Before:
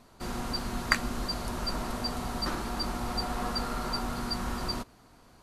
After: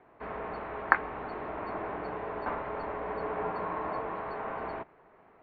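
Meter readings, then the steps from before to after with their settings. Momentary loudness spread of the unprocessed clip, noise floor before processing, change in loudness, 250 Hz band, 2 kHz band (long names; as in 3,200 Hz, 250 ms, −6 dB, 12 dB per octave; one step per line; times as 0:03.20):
5 LU, −58 dBFS, −2.0 dB, −8.0 dB, +1.0 dB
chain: single-sideband voice off tune −300 Hz 350–2,500 Hz
low-shelf EQ 150 Hz −11.5 dB
level +3.5 dB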